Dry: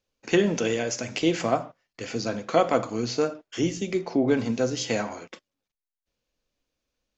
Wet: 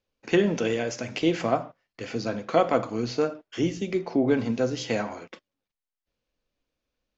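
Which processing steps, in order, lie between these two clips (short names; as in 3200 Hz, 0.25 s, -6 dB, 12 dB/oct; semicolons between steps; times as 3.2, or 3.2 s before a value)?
air absorption 100 m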